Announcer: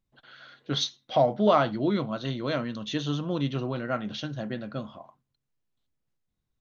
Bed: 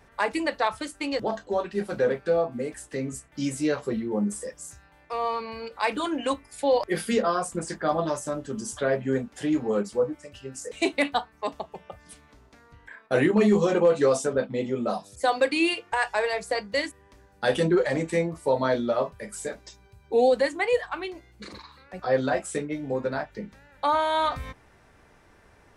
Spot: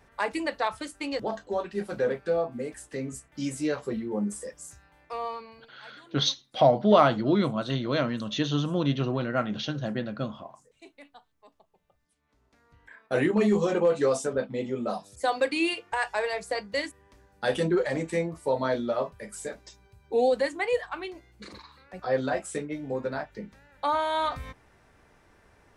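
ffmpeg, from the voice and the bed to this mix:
-filter_complex "[0:a]adelay=5450,volume=1.33[s0];[1:a]volume=10.6,afade=t=out:st=5.07:d=0.62:silence=0.0668344,afade=t=in:st=12.16:d=1.02:silence=0.0668344[s1];[s0][s1]amix=inputs=2:normalize=0"

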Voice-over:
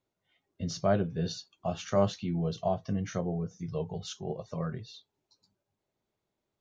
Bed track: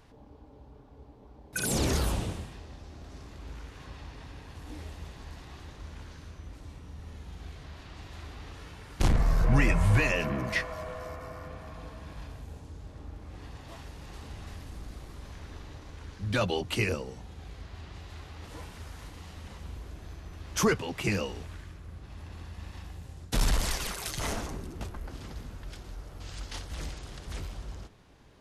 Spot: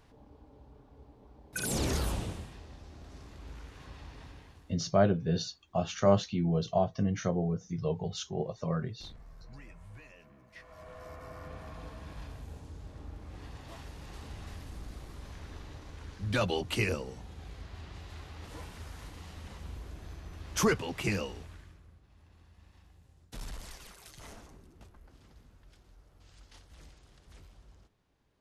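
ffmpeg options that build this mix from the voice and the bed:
-filter_complex "[0:a]adelay=4100,volume=1.26[s0];[1:a]volume=13.3,afade=t=out:st=4.25:d=0.53:silence=0.0630957,afade=t=in:st=10.53:d=1.07:silence=0.0501187,afade=t=out:st=20.99:d=1.03:silence=0.177828[s1];[s0][s1]amix=inputs=2:normalize=0"

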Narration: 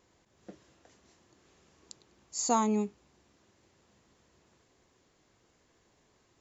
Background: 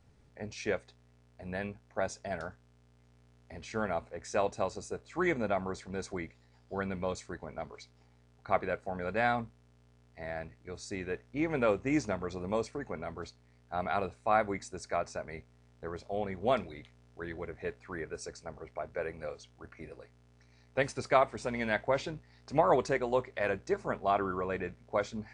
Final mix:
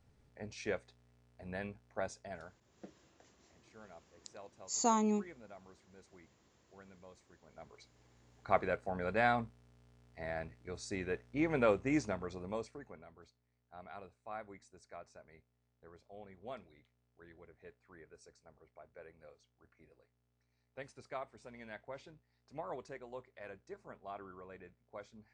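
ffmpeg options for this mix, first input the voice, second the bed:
-filter_complex "[0:a]adelay=2350,volume=0.668[s0];[1:a]volume=6.31,afade=t=out:st=1.93:d=0.83:silence=0.133352,afade=t=in:st=7.41:d=1.1:silence=0.0891251,afade=t=out:st=11.65:d=1.44:silence=0.149624[s1];[s0][s1]amix=inputs=2:normalize=0"

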